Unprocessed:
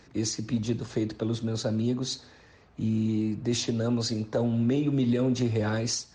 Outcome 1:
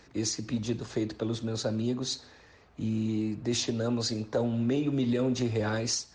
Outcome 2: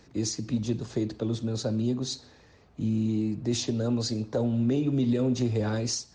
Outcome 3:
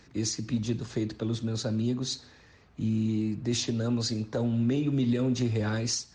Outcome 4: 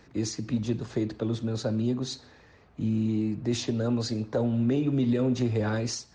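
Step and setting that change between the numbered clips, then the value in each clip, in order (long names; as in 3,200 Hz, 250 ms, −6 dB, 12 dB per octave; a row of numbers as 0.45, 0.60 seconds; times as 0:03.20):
parametric band, centre frequency: 150, 1,700, 620, 6,400 Hertz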